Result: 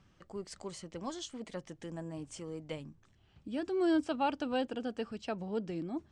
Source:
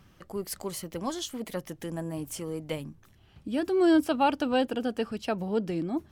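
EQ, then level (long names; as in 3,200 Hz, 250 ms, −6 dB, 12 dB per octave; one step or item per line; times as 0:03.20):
Butterworth low-pass 8,500 Hz 48 dB per octave
−7.5 dB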